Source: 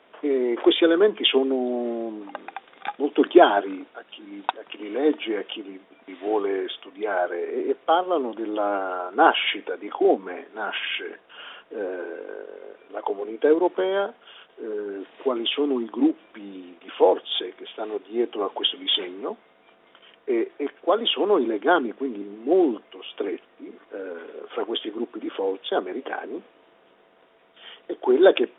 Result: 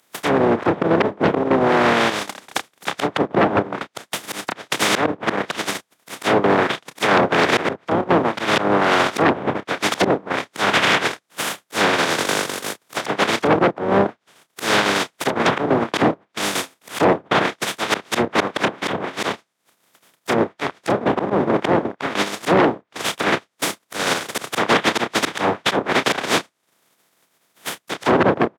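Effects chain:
compressing power law on the bin magnitudes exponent 0.15
treble cut that deepens with the level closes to 630 Hz, closed at −19.5 dBFS
transient designer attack +4 dB, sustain −12 dB
noise gate −42 dBFS, range −22 dB
parametric band 2,800 Hz −4.5 dB 0.56 octaves
double-tracking delay 30 ms −13 dB
volume swells 152 ms
sine wavefolder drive 15 dB, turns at −9.5 dBFS
high-pass filter 110 Hz 24 dB per octave

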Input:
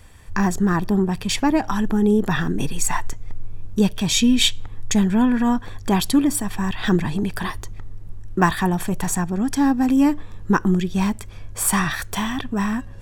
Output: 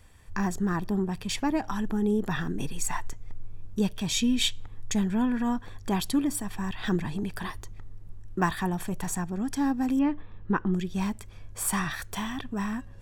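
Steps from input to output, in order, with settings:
0:09.99–0:10.74: low-pass filter 3,500 Hz 24 dB per octave
level −8.5 dB

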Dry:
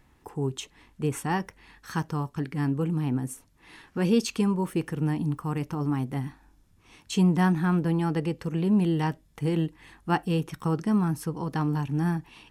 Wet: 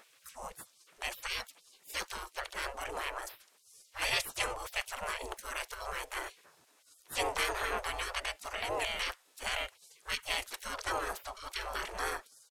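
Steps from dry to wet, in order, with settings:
pitch-shifted copies added −5 semitones 0 dB, +4 semitones −16 dB
gate on every frequency bin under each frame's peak −25 dB weak
level +7.5 dB

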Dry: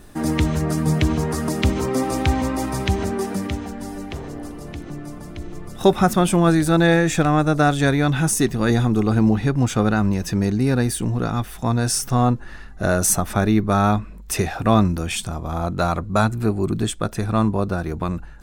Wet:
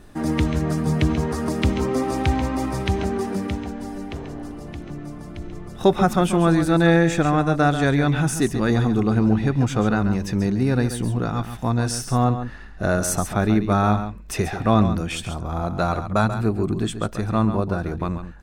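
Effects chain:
high-shelf EQ 6,900 Hz −9 dB
on a send: single-tap delay 137 ms −10 dB
on the sum: level −1.5 dB

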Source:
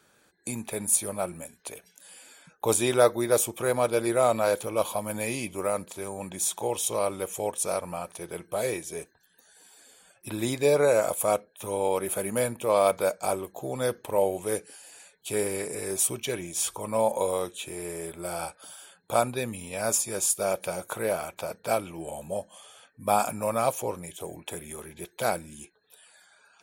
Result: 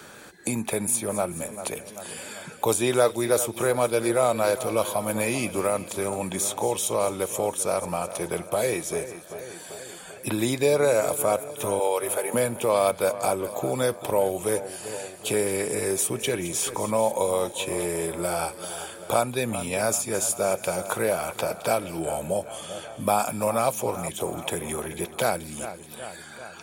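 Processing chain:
in parallel at +1 dB: downward compressor, threshold −33 dBFS, peak gain reduction 17.5 dB
0:11.79–0:12.34: on the sum: high-pass filter 380 Hz 24 dB per octave
echo with a time of its own for lows and highs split 2,700 Hz, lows 390 ms, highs 215 ms, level −15 dB
multiband upward and downward compressor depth 40%

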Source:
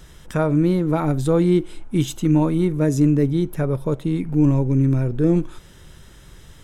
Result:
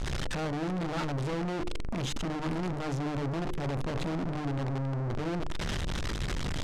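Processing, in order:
sign of each sample alone
low-shelf EQ 290 Hz +8 dB
soft clipping −26 dBFS, distortion −10 dB
low-pass filter 5,400 Hz 12 dB per octave
hum removal 50.52 Hz, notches 10
level −4.5 dB

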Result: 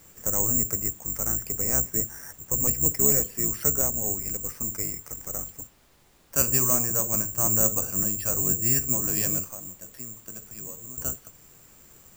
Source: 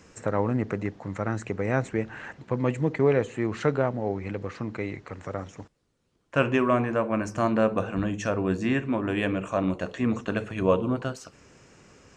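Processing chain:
sub-octave generator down 1 octave, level +2 dB
0:01.78–0:02.54: Butterworth low-pass 2,100 Hz
bad sample-rate conversion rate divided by 6×, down filtered, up zero stuff
0:09.43–0:10.98: downward compressor 6 to 1, threshold −26 dBFS, peak gain reduction 20 dB
background noise pink −51 dBFS
level −9 dB

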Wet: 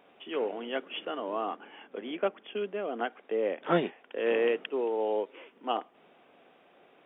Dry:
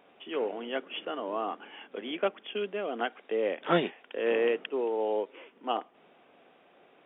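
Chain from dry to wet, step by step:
0:01.56–0:04.17: high-shelf EQ 3,300 Hz −11 dB

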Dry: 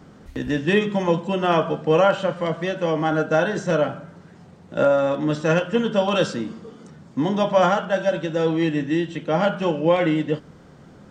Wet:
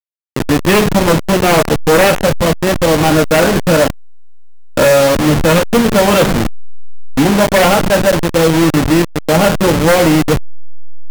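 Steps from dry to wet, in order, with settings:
hold until the input has moved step −20.5 dBFS
sine wavefolder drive 10 dB, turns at −5 dBFS

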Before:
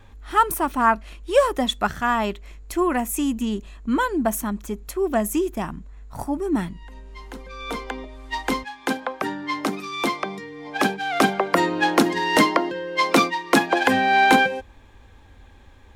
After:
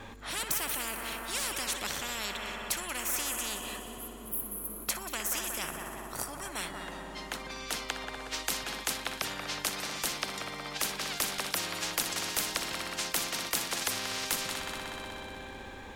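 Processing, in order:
healed spectral selection 0:03.90–0:04.82, 240–10,000 Hz before
echo machine with several playback heads 61 ms, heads first and third, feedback 70%, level −18 dB
every bin compressed towards the loudest bin 10 to 1
level −6.5 dB

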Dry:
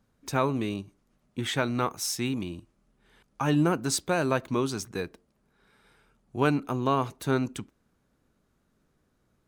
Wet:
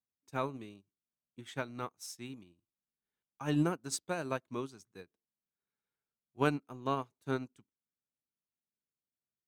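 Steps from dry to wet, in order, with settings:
high-pass filter 71 Hz
parametric band 7,700 Hz +2.5 dB 1 octave
expander for the loud parts 2.5 to 1, over −40 dBFS
level −4.5 dB

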